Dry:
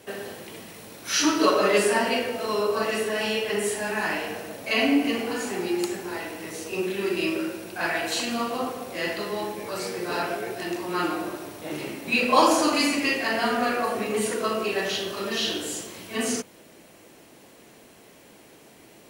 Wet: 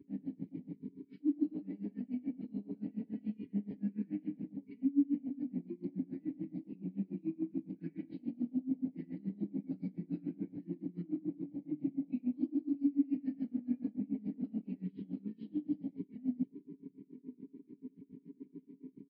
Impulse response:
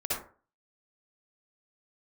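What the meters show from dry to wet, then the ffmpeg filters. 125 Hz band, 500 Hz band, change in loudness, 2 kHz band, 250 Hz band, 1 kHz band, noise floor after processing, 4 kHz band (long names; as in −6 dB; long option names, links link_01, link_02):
−3.5 dB, −26.5 dB, −13.5 dB, below −40 dB, −6.0 dB, below −40 dB, −67 dBFS, below −40 dB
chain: -filter_complex "[0:a]asplit=3[link_01][link_02][link_03];[link_01]bandpass=frequency=270:width_type=q:width=8,volume=0dB[link_04];[link_02]bandpass=frequency=2290:width_type=q:width=8,volume=-6dB[link_05];[link_03]bandpass=frequency=3010:width_type=q:width=8,volume=-9dB[link_06];[link_04][link_05][link_06]amix=inputs=3:normalize=0,areverse,acompressor=threshold=-45dB:ratio=4,areverse,lowshelf=frequency=320:width_type=q:width=3:gain=14,asplit=2[link_07][link_08];[link_08]adelay=989,lowpass=frequency=2000:poles=1,volume=-17dB,asplit=2[link_09][link_10];[link_10]adelay=989,lowpass=frequency=2000:poles=1,volume=0.5,asplit=2[link_11][link_12];[link_12]adelay=989,lowpass=frequency=2000:poles=1,volume=0.5,asplit=2[link_13][link_14];[link_14]adelay=989,lowpass=frequency=2000:poles=1,volume=0.5[link_15];[link_09][link_11][link_13][link_15]amix=inputs=4:normalize=0[link_16];[link_07][link_16]amix=inputs=2:normalize=0,aresample=11025,aresample=44100,highpass=frequency=64:width=0.5412,highpass=frequency=64:width=1.3066,equalizer=frequency=3200:width=2.7:gain=-11,aecho=1:1:6.6:0.89,afwtdn=0.0126,aeval=exprs='val(0)*pow(10,-25*(0.5-0.5*cos(2*PI*7*n/s))/20)':channel_layout=same,volume=1dB"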